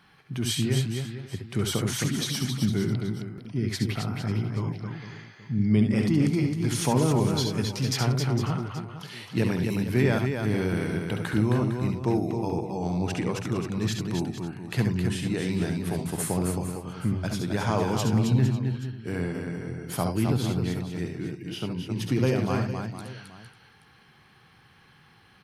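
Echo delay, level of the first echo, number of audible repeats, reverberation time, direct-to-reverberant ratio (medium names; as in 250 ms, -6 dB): 67 ms, -7.5 dB, 5, no reverb, no reverb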